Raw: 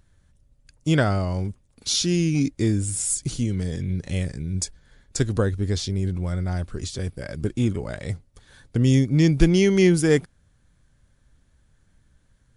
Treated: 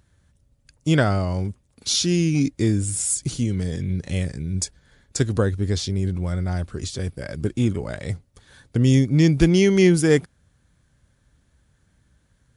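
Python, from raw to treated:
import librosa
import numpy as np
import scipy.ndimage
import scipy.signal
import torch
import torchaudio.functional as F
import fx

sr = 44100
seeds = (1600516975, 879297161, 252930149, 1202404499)

y = scipy.signal.sosfilt(scipy.signal.butter(2, 48.0, 'highpass', fs=sr, output='sos'), x)
y = y * 10.0 ** (1.5 / 20.0)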